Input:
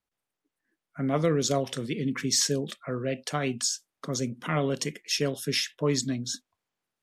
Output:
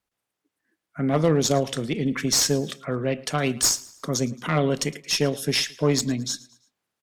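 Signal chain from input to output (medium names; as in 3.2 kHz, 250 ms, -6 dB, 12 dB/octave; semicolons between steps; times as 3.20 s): 3.37–4.16 s: treble shelf 6.3 kHz -> 10 kHz +10 dB; valve stage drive 14 dB, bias 0.5; one-sided clip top -24 dBFS; feedback delay 111 ms, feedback 42%, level -21 dB; trim +6.5 dB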